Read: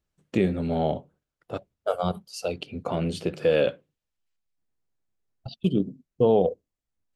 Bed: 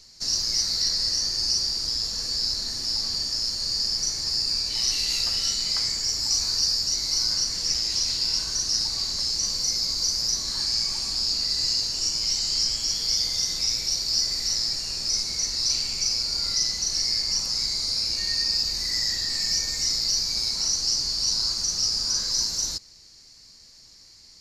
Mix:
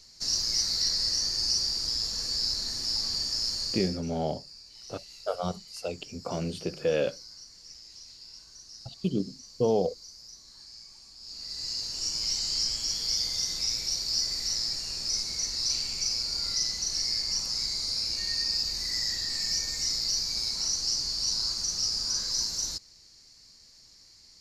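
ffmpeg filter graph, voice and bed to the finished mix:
-filter_complex "[0:a]adelay=3400,volume=0.562[s0];[1:a]volume=5.96,afade=t=out:st=3.58:d=0.43:silence=0.1,afade=t=in:st=11.19:d=1.03:silence=0.11885[s1];[s0][s1]amix=inputs=2:normalize=0"

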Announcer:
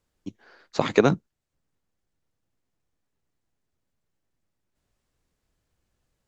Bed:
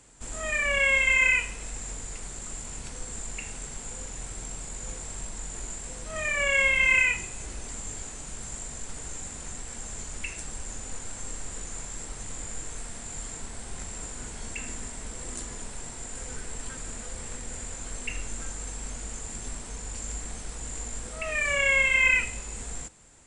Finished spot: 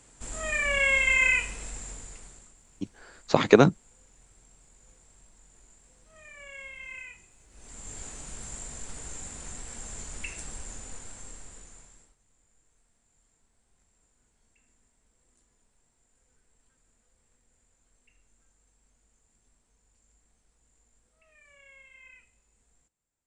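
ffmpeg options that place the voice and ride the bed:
-filter_complex "[0:a]adelay=2550,volume=1.26[s0];[1:a]volume=7.5,afade=t=out:st=1.58:d=0.96:silence=0.1,afade=t=in:st=7.5:d=0.56:silence=0.11885,afade=t=out:st=10.47:d=1.69:silence=0.0334965[s1];[s0][s1]amix=inputs=2:normalize=0"

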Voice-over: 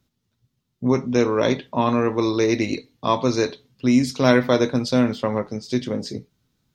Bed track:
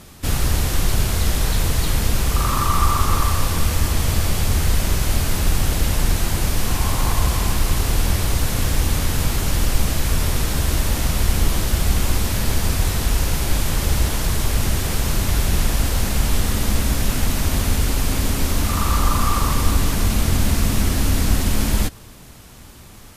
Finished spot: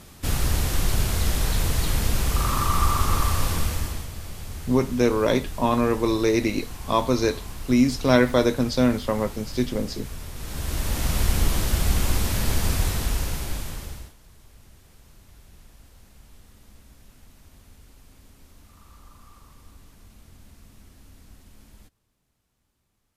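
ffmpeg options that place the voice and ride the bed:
-filter_complex "[0:a]adelay=3850,volume=0.841[s0];[1:a]volume=2.99,afade=t=out:st=3.51:d=0.58:silence=0.223872,afade=t=in:st=10.35:d=0.81:silence=0.211349,afade=t=out:st=12.74:d=1.4:silence=0.0375837[s1];[s0][s1]amix=inputs=2:normalize=0"

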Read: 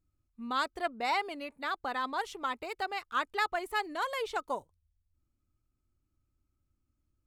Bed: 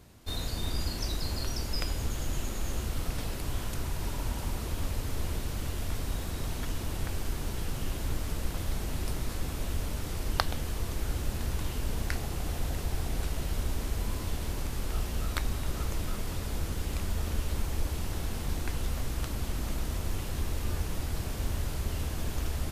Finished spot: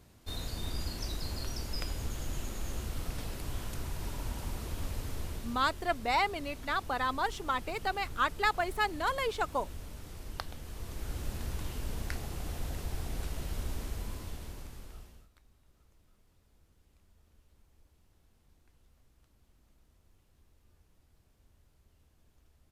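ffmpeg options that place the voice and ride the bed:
-filter_complex "[0:a]adelay=5050,volume=1.26[s0];[1:a]volume=1.26,afade=t=out:st=5.05:d=0.77:silence=0.446684,afade=t=in:st=10.61:d=0.65:silence=0.473151,afade=t=out:st=13.76:d=1.53:silence=0.0354813[s1];[s0][s1]amix=inputs=2:normalize=0"

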